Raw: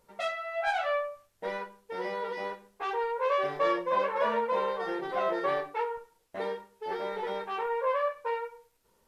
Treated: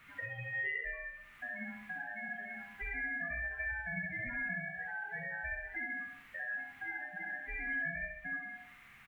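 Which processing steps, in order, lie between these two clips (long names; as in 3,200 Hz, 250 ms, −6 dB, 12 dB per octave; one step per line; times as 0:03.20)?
each half-wave held at its own peak
ring modulation 1,200 Hz
high-shelf EQ 2,300 Hz −5 dB
hum removal 73.19 Hz, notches 31
spectral peaks only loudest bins 8
in parallel at −4.5 dB: bit-depth reduction 8 bits, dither triangular
on the sum: downward compressor 5 to 1, threshold −40 dBFS, peak gain reduction 17 dB
drawn EQ curve 210 Hz 0 dB, 330 Hz −12 dB, 550 Hz −15 dB, 2,100 Hz +5 dB, 4,900 Hz −24 dB
on a send: repeating echo 66 ms, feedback 48%, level −3.5 dB
on the sum: level +1 dB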